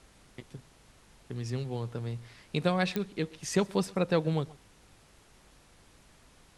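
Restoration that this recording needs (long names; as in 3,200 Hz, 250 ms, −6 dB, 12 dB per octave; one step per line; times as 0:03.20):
click removal
hum removal 50.7 Hz, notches 4
noise reduction from a noise print 17 dB
echo removal 125 ms −23 dB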